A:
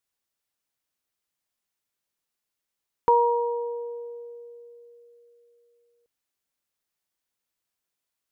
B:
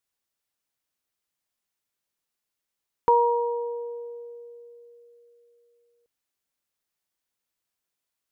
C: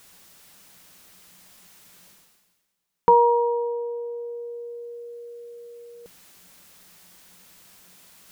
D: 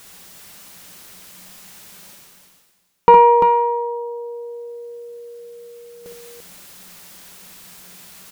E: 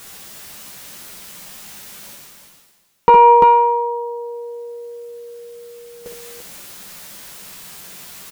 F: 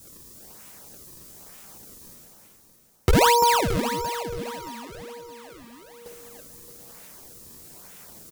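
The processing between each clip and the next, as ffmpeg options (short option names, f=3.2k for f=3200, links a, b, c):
-af anull
-af "equalizer=f=180:w=6.6:g=14,areverse,acompressor=mode=upward:threshold=-33dB:ratio=2.5,areverse,volume=4dB"
-af "acontrast=50,aecho=1:1:60|65|343:0.355|0.355|0.473,volume=2dB"
-filter_complex "[0:a]asplit=2[a][b];[b]adelay=14,volume=-5.5dB[c];[a][c]amix=inputs=2:normalize=0,alimiter=level_in=5dB:limit=-1dB:release=50:level=0:latency=1,volume=-1dB"
-filter_complex "[0:a]acrossover=split=4300[a][b];[a]acrusher=samples=35:mix=1:aa=0.000001:lfo=1:lforange=56:lforate=1.1[c];[c][b]amix=inputs=2:normalize=0,aecho=1:1:622|1244|1866|2488:0.282|0.0986|0.0345|0.0121,volume=-8.5dB"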